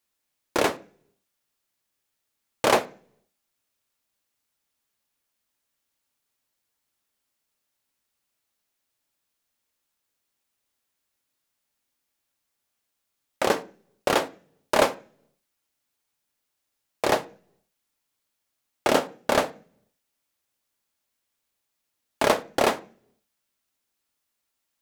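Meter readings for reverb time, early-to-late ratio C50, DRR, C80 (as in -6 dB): 0.45 s, 19.5 dB, 10.0 dB, 24.0 dB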